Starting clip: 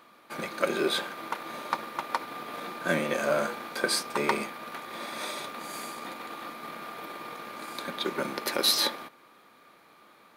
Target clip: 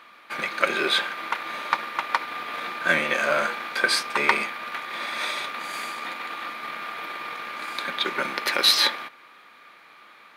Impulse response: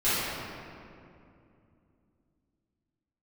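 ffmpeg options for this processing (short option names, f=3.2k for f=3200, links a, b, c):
-af "equalizer=f=2.2k:w=0.47:g=14.5,volume=-3.5dB"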